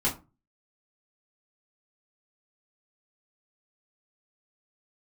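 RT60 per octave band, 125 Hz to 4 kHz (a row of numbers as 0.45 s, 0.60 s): 0.50 s, 0.40 s, 0.30 s, 0.30 s, 0.20 s, 0.20 s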